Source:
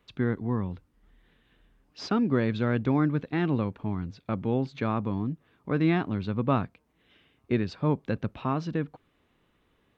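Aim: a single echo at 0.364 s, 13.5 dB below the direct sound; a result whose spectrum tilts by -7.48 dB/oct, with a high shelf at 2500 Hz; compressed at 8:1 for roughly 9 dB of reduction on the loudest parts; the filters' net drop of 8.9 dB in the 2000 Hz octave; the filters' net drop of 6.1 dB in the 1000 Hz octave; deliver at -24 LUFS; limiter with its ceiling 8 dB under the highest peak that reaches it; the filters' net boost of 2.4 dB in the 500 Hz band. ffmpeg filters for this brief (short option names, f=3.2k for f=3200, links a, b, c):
-af "equalizer=f=500:t=o:g=5,equalizer=f=1k:t=o:g=-7,equalizer=f=2k:t=o:g=-6,highshelf=f=2.5k:g=-7.5,acompressor=threshold=-28dB:ratio=8,alimiter=level_in=2dB:limit=-24dB:level=0:latency=1,volume=-2dB,aecho=1:1:364:0.211,volume=13dB"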